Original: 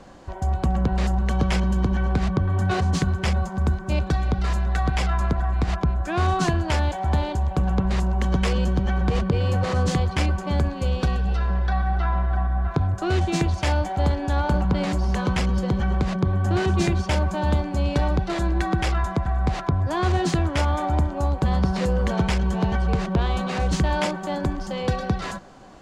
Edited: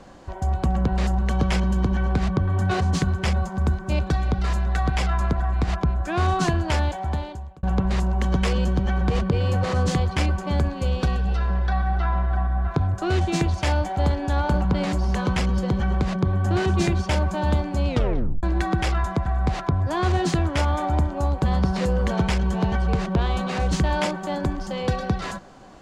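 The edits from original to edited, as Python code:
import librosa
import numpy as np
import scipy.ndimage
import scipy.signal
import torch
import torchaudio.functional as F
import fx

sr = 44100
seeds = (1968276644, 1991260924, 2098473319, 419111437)

y = fx.edit(x, sr, fx.fade_out_span(start_s=6.81, length_s=0.82),
    fx.tape_stop(start_s=17.88, length_s=0.55), tone=tone)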